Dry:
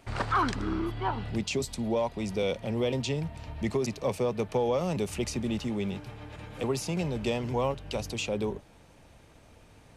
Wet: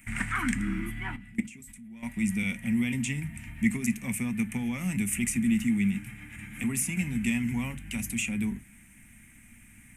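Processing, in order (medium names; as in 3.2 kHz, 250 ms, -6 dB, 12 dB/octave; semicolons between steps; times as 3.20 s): FFT filter 160 Hz 0 dB, 240 Hz +6 dB, 480 Hz -26 dB, 750 Hz -15 dB, 1.1 kHz -12 dB, 2.1 kHz +12 dB, 4.4 kHz -16 dB, 8.4 kHz +14 dB; 1.16–2.03 s: level held to a coarse grid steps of 24 dB; reverberation RT60 0.25 s, pre-delay 4 ms, DRR 11 dB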